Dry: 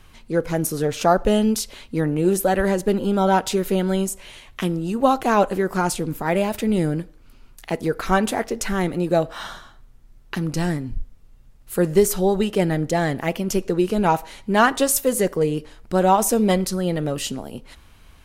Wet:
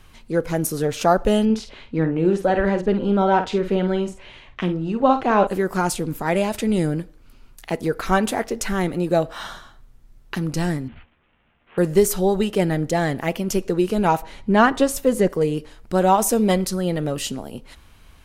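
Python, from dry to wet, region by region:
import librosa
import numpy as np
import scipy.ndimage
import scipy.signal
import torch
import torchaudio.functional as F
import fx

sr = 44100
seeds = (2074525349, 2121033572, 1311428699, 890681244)

y = fx.chain(x, sr, fx.lowpass(hz=3200.0, slope=12),
    fx.doubler(ms=50.0, db=-9), at=(1.45, 5.47))
y = fx.chain(y, sr, fx.lowpass(hz=9700.0, slope=12),
    fx.high_shelf(hz=5600.0, db=6.0), at=(6.19, 6.87))
y = fx.chain(y, sr, fx.cvsd(bps=16000),
    fx.highpass(hz=300.0, slope=6),
    fx.doubler(ms=13.0, db=-3.0), at=(10.88, 11.78))
y = fx.chain(y, sr, fx.lowpass(hz=3300.0, slope=6),
    fx.low_shelf(hz=330.0, db=5.5), at=(14.22, 15.3))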